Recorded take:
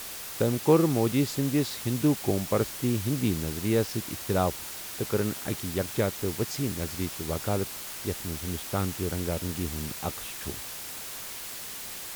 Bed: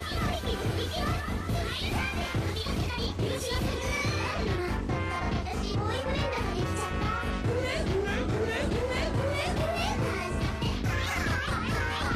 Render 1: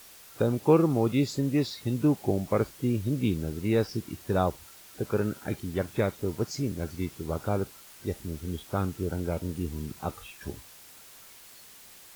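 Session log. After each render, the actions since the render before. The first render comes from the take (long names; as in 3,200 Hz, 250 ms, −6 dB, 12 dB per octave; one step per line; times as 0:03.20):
noise reduction from a noise print 12 dB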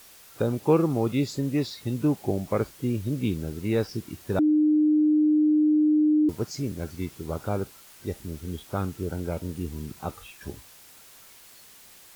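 0:04.39–0:06.29: beep over 304 Hz −17 dBFS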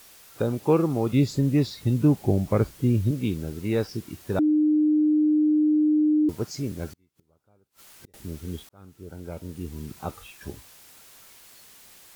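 0:01.13–0:03.11: low-shelf EQ 200 Hz +10.5 dB
0:06.87–0:08.14: gate with flip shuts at −33 dBFS, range −35 dB
0:08.69–0:09.95: fade in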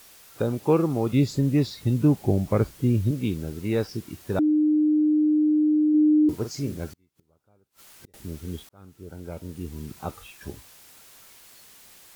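0:05.90–0:06.77: double-tracking delay 43 ms −9 dB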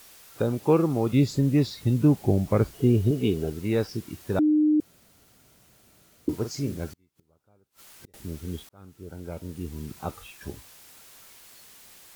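0:02.73–0:03.50: hollow resonant body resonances 420/680/2,900 Hz, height 15 dB, ringing for 60 ms
0:04.80–0:06.28: fill with room tone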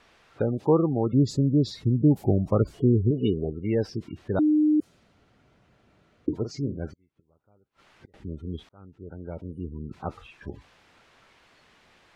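gate on every frequency bin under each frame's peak −25 dB strong
low-pass that shuts in the quiet parts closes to 2,400 Hz, open at −17.5 dBFS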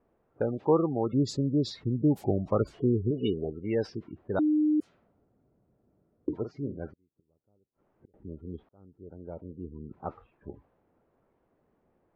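low-shelf EQ 270 Hz −9 dB
low-pass that shuts in the quiet parts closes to 400 Hz, open at −22.5 dBFS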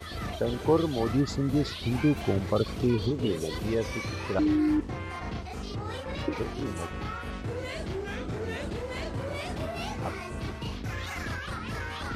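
mix in bed −5.5 dB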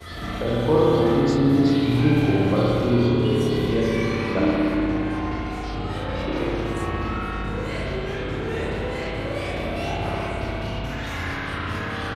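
double-tracking delay 26 ms −6.5 dB
spring reverb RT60 3.1 s, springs 58 ms, chirp 30 ms, DRR −6 dB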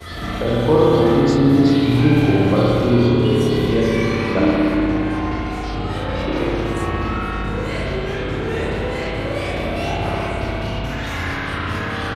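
level +4.5 dB
brickwall limiter −3 dBFS, peak gain reduction 1.5 dB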